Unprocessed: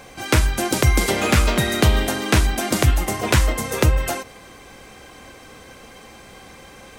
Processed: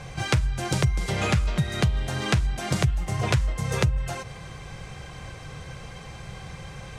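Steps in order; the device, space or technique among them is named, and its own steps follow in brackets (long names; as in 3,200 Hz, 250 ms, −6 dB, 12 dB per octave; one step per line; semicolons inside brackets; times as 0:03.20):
jukebox (low-pass filter 8,000 Hz 12 dB per octave; low shelf with overshoot 190 Hz +8.5 dB, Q 3; downward compressor 6 to 1, threshold −21 dBFS, peak gain reduction 19 dB)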